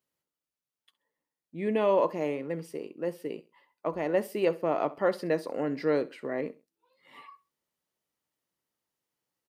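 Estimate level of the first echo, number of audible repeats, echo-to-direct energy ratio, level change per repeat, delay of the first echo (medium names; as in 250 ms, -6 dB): -19.0 dB, 2, -18.5 dB, -10.5 dB, 66 ms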